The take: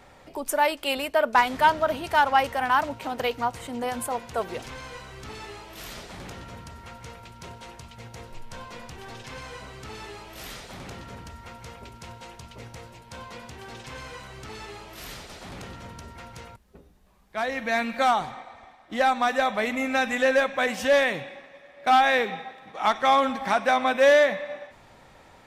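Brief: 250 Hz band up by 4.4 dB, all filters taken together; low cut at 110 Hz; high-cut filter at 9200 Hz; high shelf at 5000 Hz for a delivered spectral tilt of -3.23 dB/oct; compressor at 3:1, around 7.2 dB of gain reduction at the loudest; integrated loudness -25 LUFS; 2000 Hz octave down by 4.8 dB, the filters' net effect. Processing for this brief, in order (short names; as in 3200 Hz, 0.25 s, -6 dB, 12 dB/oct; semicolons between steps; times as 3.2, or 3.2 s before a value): HPF 110 Hz; LPF 9200 Hz; bell 250 Hz +5 dB; bell 2000 Hz -5.5 dB; high shelf 5000 Hz -5.5 dB; compressor 3:1, threshold -25 dBFS; gain +6 dB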